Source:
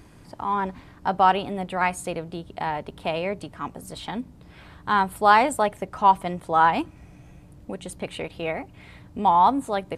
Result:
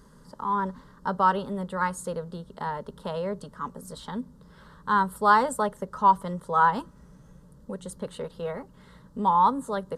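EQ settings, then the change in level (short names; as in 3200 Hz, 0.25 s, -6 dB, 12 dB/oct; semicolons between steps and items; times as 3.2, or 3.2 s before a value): high shelf 9100 Hz -4.5 dB; fixed phaser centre 480 Hz, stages 8; 0.0 dB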